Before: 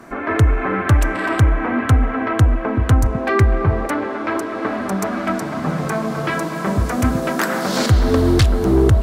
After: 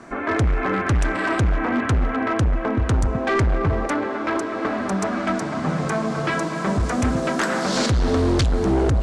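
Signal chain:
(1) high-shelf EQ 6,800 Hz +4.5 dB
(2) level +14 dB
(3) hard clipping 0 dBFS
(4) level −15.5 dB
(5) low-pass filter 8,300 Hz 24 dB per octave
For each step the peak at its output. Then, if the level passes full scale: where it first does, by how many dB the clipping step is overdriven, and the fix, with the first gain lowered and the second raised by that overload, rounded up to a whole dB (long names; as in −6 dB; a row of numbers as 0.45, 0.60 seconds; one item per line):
−4.5, +9.5, 0.0, −15.5, −13.5 dBFS
step 2, 9.5 dB
step 2 +4 dB, step 4 −5.5 dB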